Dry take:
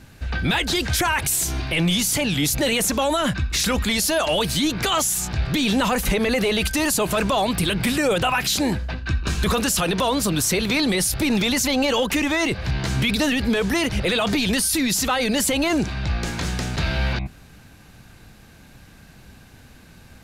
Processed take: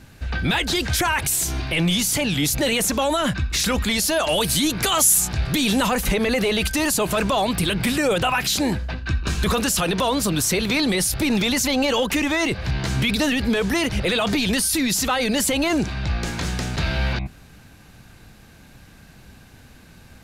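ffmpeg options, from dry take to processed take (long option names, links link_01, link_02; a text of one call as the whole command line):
ffmpeg -i in.wav -filter_complex "[0:a]asettb=1/sr,asplit=3[link_01][link_02][link_03];[link_01]atrim=end=4.284[link_04];[link_02]atrim=start=4.28:end=5.87,asetpts=PTS-STARTPTS,afade=type=in:duration=0.004:curve=qsin,afade=type=out:start_time=1.586:duration=0.004:curve=qsin,equalizer=frequency=11000:width_type=o:width=1.1:gain=9[link_05];[link_03]atrim=start=5.866[link_06];[link_04][link_05]acrossfade=duration=0.004:curve1=hsin:curve2=qsin[link_07];[link_07][link_06]acrossfade=duration=0.004:curve1=qsin:curve2=hsin" out.wav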